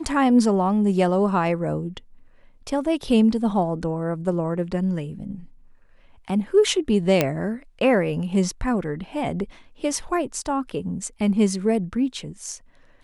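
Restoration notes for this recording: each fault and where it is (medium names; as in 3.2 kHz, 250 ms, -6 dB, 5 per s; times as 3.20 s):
7.21 s: pop -4 dBFS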